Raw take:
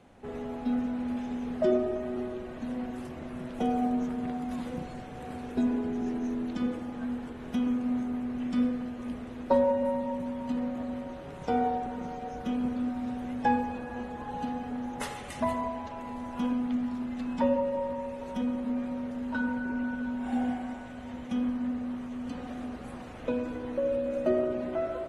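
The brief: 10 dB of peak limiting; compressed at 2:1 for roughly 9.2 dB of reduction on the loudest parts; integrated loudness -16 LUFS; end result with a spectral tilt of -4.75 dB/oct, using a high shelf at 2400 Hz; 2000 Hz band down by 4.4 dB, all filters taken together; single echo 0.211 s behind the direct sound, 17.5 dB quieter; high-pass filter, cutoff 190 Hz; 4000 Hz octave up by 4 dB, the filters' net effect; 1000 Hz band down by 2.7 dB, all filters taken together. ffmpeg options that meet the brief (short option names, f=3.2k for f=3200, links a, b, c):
-af "highpass=190,equalizer=f=1k:t=o:g=-3,equalizer=f=2k:t=o:g=-8.5,highshelf=f=2.4k:g=5.5,equalizer=f=4k:t=o:g=4,acompressor=threshold=-38dB:ratio=2,alimiter=level_in=8dB:limit=-24dB:level=0:latency=1,volume=-8dB,aecho=1:1:211:0.133,volume=23.5dB"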